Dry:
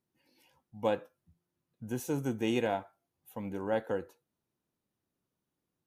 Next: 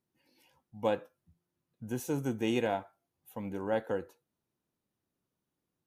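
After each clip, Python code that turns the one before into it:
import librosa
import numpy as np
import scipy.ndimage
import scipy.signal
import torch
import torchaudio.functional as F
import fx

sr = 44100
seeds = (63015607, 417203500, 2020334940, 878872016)

y = x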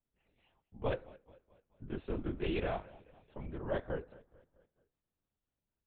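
y = fx.echo_feedback(x, sr, ms=217, feedback_pct=50, wet_db=-21)
y = fx.lpc_vocoder(y, sr, seeds[0], excitation='whisper', order=8)
y = F.gain(torch.from_numpy(y), -4.5).numpy()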